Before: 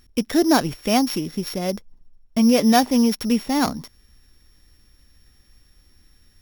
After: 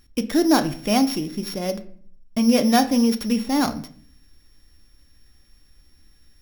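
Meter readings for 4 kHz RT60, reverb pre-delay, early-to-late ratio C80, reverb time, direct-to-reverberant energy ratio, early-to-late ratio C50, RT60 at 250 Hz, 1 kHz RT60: 0.35 s, 3 ms, 18.0 dB, 0.55 s, 8.0 dB, 15.0 dB, 0.75 s, 0.45 s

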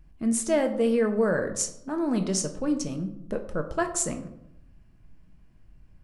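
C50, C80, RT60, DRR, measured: 11.0 dB, 13.5 dB, 0.85 s, 5.5 dB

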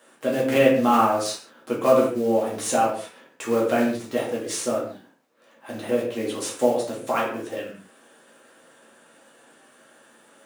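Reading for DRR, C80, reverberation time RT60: −5.0 dB, 7.5 dB, non-exponential decay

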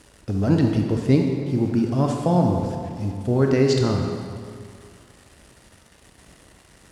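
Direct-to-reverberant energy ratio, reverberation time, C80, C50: 1.5 dB, 2.3 s, 4.0 dB, 2.5 dB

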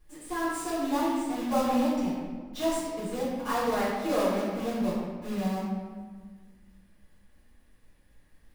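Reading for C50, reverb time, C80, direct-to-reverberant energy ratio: −1.0 dB, 1.6 s, 1.0 dB, −11.0 dB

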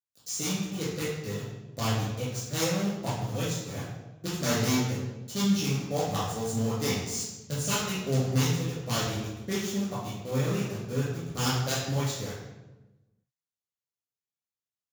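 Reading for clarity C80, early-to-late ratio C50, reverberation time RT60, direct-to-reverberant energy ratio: 3.5 dB, 0.0 dB, 1.1 s, −9.5 dB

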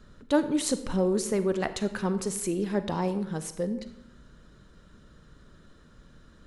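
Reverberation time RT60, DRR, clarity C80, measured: 0.80 s, 11.0 dB, 14.5 dB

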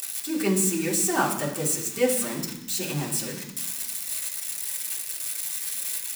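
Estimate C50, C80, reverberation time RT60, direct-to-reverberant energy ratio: 7.5 dB, 10.0 dB, 0.95 s, −4.0 dB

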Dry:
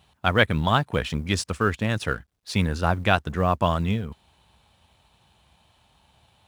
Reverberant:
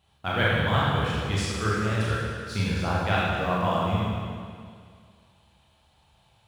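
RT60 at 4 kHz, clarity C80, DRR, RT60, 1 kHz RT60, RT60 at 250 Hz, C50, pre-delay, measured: 2.0 s, −1.0 dB, −7.0 dB, 2.1 s, 2.1 s, 2.1 s, −3.0 dB, 28 ms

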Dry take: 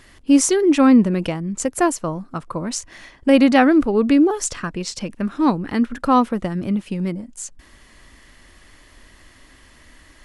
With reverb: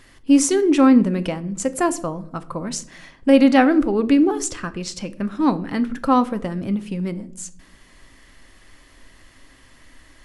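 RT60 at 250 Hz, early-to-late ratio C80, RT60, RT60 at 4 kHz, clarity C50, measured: 1.0 s, 21.0 dB, 0.65 s, 0.40 s, 17.5 dB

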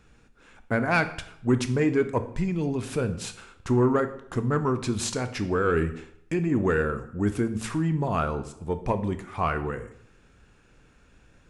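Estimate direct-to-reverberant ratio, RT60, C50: 9.5 dB, 0.70 s, 13.0 dB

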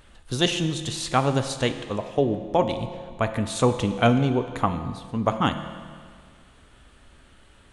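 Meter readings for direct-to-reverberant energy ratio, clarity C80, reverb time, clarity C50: 8.0 dB, 10.5 dB, 1.9 s, 9.5 dB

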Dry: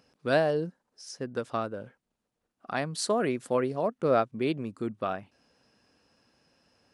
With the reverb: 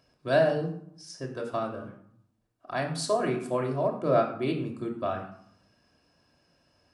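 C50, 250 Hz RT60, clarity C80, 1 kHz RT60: 7.5 dB, 0.85 s, 10.0 dB, 0.70 s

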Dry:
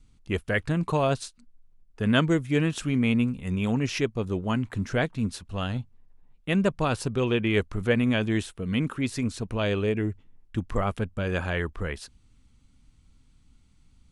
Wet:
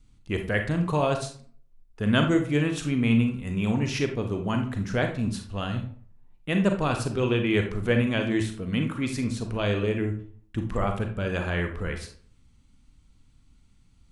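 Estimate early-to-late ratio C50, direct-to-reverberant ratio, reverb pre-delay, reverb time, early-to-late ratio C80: 7.5 dB, 4.5 dB, 32 ms, 0.50 s, 12.5 dB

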